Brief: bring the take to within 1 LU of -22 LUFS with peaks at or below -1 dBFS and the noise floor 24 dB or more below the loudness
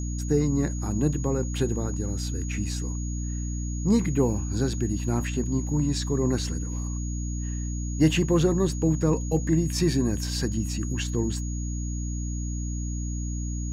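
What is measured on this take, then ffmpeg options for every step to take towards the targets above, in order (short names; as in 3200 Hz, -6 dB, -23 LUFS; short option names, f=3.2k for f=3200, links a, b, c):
hum 60 Hz; harmonics up to 300 Hz; hum level -28 dBFS; steady tone 6700 Hz; tone level -40 dBFS; loudness -27.0 LUFS; peak -9.5 dBFS; loudness target -22.0 LUFS
-> -af "bandreject=f=60:t=h:w=6,bandreject=f=120:t=h:w=6,bandreject=f=180:t=h:w=6,bandreject=f=240:t=h:w=6,bandreject=f=300:t=h:w=6"
-af "bandreject=f=6.7k:w=30"
-af "volume=5dB"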